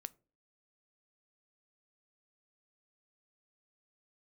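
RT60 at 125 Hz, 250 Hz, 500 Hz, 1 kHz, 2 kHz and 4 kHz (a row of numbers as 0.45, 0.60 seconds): 0.45, 0.50, 0.45, 0.30, 0.25, 0.20 seconds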